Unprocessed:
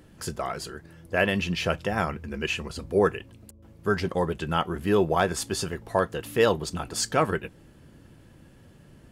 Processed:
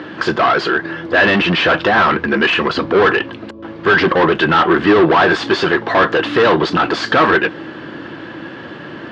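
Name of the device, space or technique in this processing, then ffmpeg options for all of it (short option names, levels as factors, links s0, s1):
overdrive pedal into a guitar cabinet: -filter_complex "[0:a]asplit=2[s0][s1];[s1]highpass=f=720:p=1,volume=39.8,asoftclip=type=tanh:threshold=0.355[s2];[s0][s2]amix=inputs=2:normalize=0,lowpass=f=6200:p=1,volume=0.501,highpass=100,equalizer=f=320:t=q:w=4:g=9,equalizer=f=1100:t=q:w=4:g=4,equalizer=f=1600:t=q:w=4:g=5,equalizer=f=2400:t=q:w=4:g=-3,lowpass=f=3900:w=0.5412,lowpass=f=3900:w=1.3066,volume=1.33"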